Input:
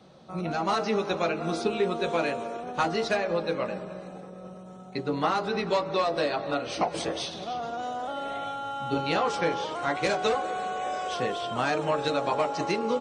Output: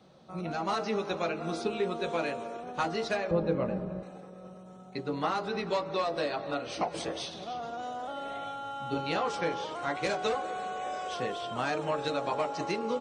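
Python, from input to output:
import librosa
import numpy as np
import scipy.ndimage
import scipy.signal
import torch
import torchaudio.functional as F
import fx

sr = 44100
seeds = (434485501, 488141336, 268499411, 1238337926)

y = fx.tilt_eq(x, sr, slope=-4.0, at=(3.31, 4.03))
y = y * 10.0 ** (-4.5 / 20.0)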